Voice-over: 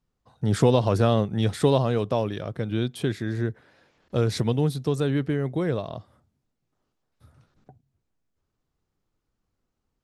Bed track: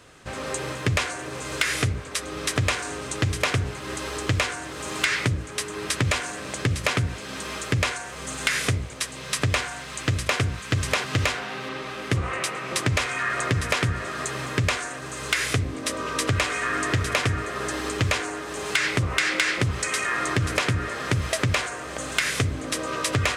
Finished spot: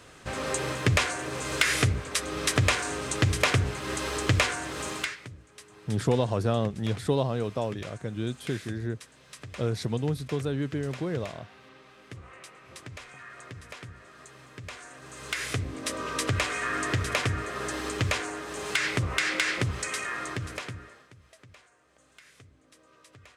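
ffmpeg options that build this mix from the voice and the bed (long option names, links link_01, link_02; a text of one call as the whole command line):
ffmpeg -i stem1.wav -i stem2.wav -filter_complex "[0:a]adelay=5450,volume=-5.5dB[link_01];[1:a]volume=16dB,afade=type=out:start_time=4.8:duration=0.36:silence=0.1,afade=type=in:start_time=14.61:duration=1.34:silence=0.158489,afade=type=out:start_time=19.57:duration=1.51:silence=0.0473151[link_02];[link_01][link_02]amix=inputs=2:normalize=0" out.wav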